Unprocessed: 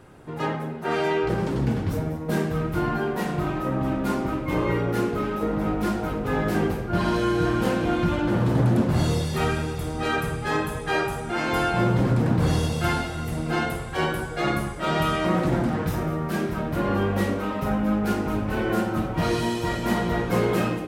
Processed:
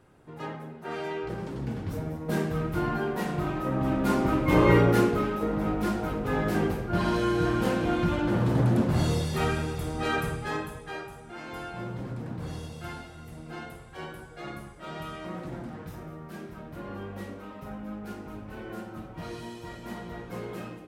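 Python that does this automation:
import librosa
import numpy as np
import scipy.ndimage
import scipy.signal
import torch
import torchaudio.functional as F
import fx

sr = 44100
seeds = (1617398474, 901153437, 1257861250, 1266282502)

y = fx.gain(x, sr, db=fx.line((1.6, -10.0), (2.32, -3.5), (3.62, -3.5), (4.78, 5.5), (5.38, -3.0), (10.28, -3.0), (11.05, -15.0)))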